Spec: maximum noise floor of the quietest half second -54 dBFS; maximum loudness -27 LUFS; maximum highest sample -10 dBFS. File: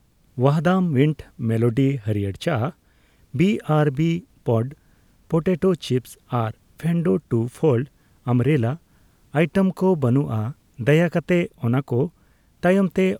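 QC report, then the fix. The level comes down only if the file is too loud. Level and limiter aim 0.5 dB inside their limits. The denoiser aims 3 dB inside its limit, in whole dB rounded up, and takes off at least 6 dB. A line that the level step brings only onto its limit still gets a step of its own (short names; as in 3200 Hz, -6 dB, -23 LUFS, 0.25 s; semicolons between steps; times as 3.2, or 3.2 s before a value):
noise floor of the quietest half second -58 dBFS: OK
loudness -22.0 LUFS: fail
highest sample -4.0 dBFS: fail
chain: gain -5.5 dB; limiter -10.5 dBFS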